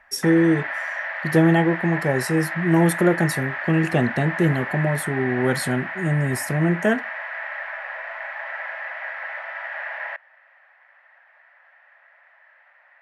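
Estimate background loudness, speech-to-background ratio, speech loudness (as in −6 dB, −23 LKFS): −29.0 LKFS, 7.5 dB, −21.5 LKFS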